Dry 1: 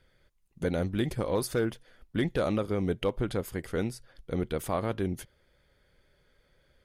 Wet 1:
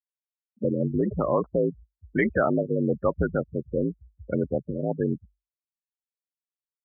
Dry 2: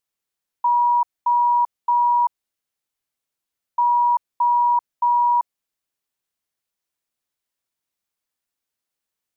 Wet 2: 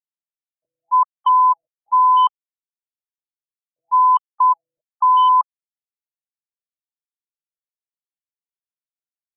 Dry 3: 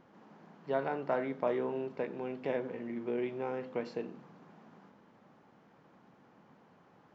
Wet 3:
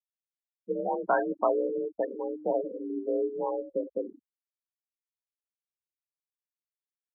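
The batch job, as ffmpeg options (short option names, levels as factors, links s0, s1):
-filter_complex "[0:a]afftfilt=real='re*gte(hypot(re,im),0.0355)':imag='im*gte(hypot(re,im),0.0355)':win_size=1024:overlap=0.75,adynamicequalizer=threshold=0.002:dfrequency=3800:dqfactor=4.7:tfrequency=3800:tqfactor=4.7:attack=5:release=100:ratio=0.375:range=2:mode=cutabove:tftype=bell,asplit=2[s0][s1];[s1]alimiter=limit=0.075:level=0:latency=1:release=19,volume=0.891[s2];[s0][s2]amix=inputs=2:normalize=0,afreqshift=49,acrossover=split=1200[s3][s4];[s4]aeval=exprs='0.141*sin(PI/2*2*val(0)/0.141)':c=same[s5];[s3][s5]amix=inputs=2:normalize=0,afftfilt=real='re*lt(b*sr/1024,550*pow(3200/550,0.5+0.5*sin(2*PI*1*pts/sr)))':imag='im*lt(b*sr/1024,550*pow(3200/550,0.5+0.5*sin(2*PI*1*pts/sr)))':win_size=1024:overlap=0.75"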